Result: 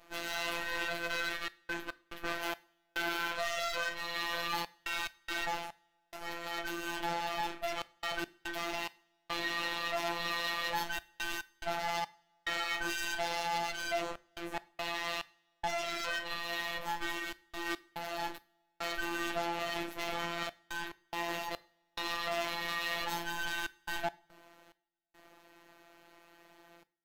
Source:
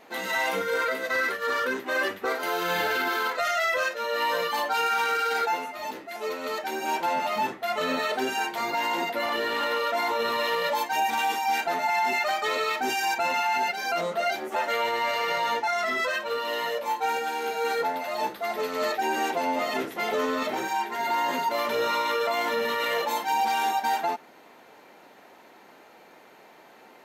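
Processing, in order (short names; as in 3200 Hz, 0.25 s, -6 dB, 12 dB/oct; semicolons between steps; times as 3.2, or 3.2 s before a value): minimum comb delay 3.2 ms; dynamic EQ 3200 Hz, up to +5 dB, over -42 dBFS, Q 1.1; in parallel at -1.5 dB: limiter -22 dBFS, peak gain reduction 8 dB; on the sum: de-hum 59.64 Hz, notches 30; robotiser 170 Hz; flange 0.18 Hz, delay 4.1 ms, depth 4.7 ms, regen +88%; step gate "xxxxxxx.x.xx..x" 71 bpm -60 dB; on a send at -16 dB: reverb, pre-delay 3 ms; on the sum: gain -5 dB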